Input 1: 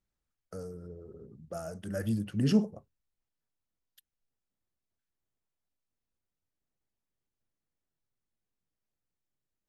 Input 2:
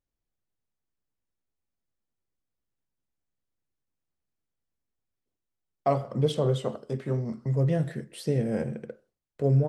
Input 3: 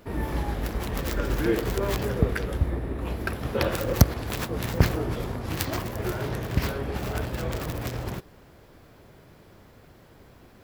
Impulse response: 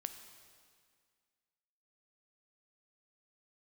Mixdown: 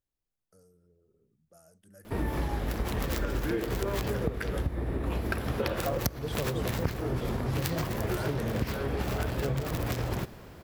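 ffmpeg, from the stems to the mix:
-filter_complex "[0:a]aemphasis=mode=production:type=50fm,volume=0.1[s0];[1:a]volume=0.708[s1];[2:a]adelay=2050,volume=1,asplit=2[s2][s3];[s3]volume=0.562[s4];[3:a]atrim=start_sample=2205[s5];[s4][s5]afir=irnorm=-1:irlink=0[s6];[s0][s1][s2][s6]amix=inputs=4:normalize=0,acompressor=threshold=0.0501:ratio=12"

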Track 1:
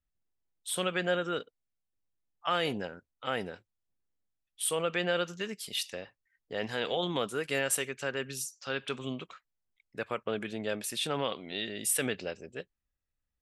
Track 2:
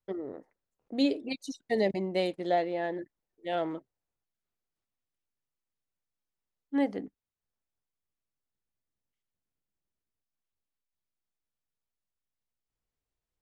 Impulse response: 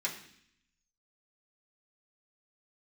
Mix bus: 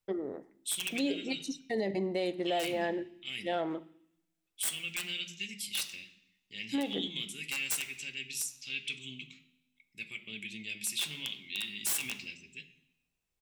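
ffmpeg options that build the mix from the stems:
-filter_complex "[0:a]firequalizer=gain_entry='entry(210,0);entry(510,-23);entry(1500,-22);entry(2200,9);entry(3400,7)':delay=0.05:min_phase=1,aeval=exprs='(mod(7.08*val(0)+1,2)-1)/7.08':c=same,volume=0.188,asplit=2[s0][s1];[s1]volume=0.596[s2];[1:a]volume=0.562,asplit=2[s3][s4];[s4]volume=0.211[s5];[2:a]atrim=start_sample=2205[s6];[s2][s5]amix=inputs=2:normalize=0[s7];[s7][s6]afir=irnorm=-1:irlink=0[s8];[s0][s3][s8]amix=inputs=3:normalize=0,acontrast=48,alimiter=limit=0.0708:level=0:latency=1:release=110"

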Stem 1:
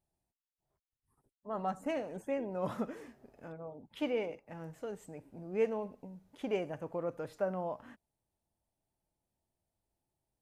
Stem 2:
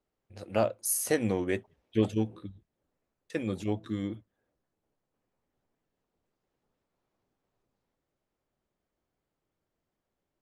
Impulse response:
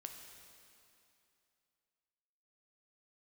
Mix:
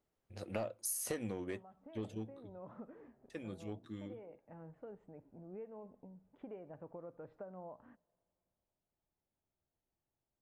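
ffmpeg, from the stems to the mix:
-filter_complex "[0:a]acompressor=threshold=0.0112:ratio=6,lowpass=1300,volume=0.447,asplit=2[s0][s1];[s1]volume=0.106[s2];[1:a]asoftclip=type=tanh:threshold=0.133,volume=0.794,afade=t=out:st=1.16:d=0.46:silence=0.298538,asplit=2[s3][s4];[s4]apad=whole_len=459339[s5];[s0][s5]sidechaincompress=threshold=0.00708:ratio=8:attack=16:release=856[s6];[2:a]atrim=start_sample=2205[s7];[s2][s7]afir=irnorm=-1:irlink=0[s8];[s6][s3][s8]amix=inputs=3:normalize=0,acompressor=threshold=0.0158:ratio=6"

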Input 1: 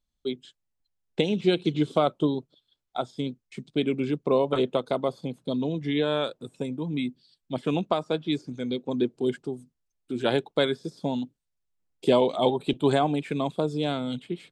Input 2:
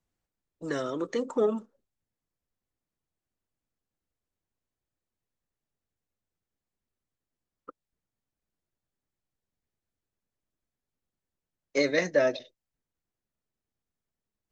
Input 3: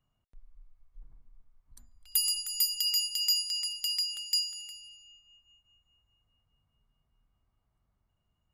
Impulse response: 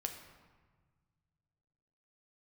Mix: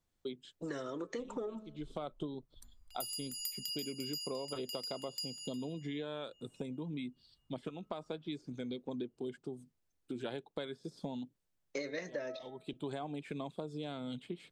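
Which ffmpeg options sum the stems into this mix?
-filter_complex "[0:a]volume=0.596[s0];[1:a]bandreject=f=215.4:t=h:w=4,bandreject=f=430.8:t=h:w=4,bandreject=f=646.2:t=h:w=4,bandreject=f=861.6:t=h:w=4,bandreject=f=1077:t=h:w=4,bandreject=f=1292.4:t=h:w=4,bandreject=f=1507.8:t=h:w=4,bandreject=f=1723.2:t=h:w=4,bandreject=f=1938.6:t=h:w=4,bandreject=f=2154:t=h:w=4,bandreject=f=2369.4:t=h:w=4,volume=1,asplit=2[s1][s2];[2:a]adelay=850,volume=0.708[s3];[s2]apad=whole_len=640011[s4];[s0][s4]sidechaincompress=threshold=0.00355:ratio=4:attack=8.5:release=390[s5];[s5][s1][s3]amix=inputs=3:normalize=0,acompressor=threshold=0.0126:ratio=6"

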